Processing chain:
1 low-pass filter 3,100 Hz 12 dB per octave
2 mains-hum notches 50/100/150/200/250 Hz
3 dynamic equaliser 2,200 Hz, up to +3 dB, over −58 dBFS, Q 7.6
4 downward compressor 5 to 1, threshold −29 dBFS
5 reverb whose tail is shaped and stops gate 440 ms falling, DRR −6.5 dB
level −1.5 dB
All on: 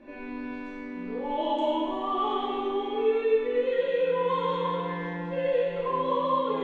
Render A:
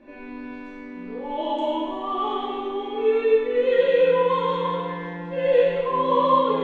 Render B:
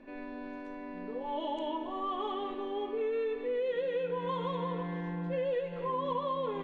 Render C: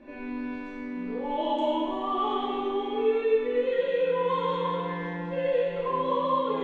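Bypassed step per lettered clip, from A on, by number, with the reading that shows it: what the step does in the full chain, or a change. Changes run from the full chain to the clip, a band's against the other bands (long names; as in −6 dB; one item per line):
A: 4, average gain reduction 3.0 dB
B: 5, change in momentary loudness spread −1 LU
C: 2, change in momentary loudness spread −2 LU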